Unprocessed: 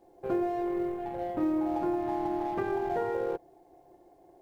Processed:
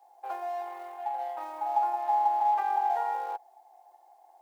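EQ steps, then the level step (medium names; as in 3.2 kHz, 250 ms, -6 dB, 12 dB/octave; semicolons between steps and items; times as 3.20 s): ladder high-pass 780 Hz, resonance 80%; treble shelf 2.2 kHz +10.5 dB; +5.5 dB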